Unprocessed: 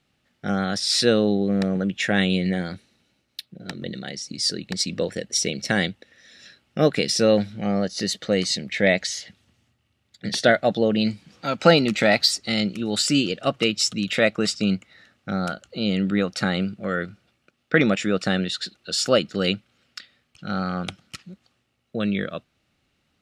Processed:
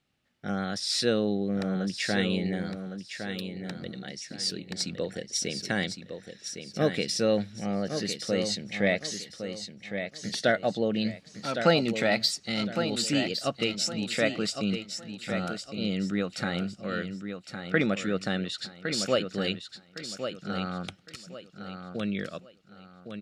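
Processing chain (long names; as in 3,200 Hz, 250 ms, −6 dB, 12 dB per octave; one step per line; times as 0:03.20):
repeating echo 1,110 ms, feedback 30%, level −8 dB
level −7 dB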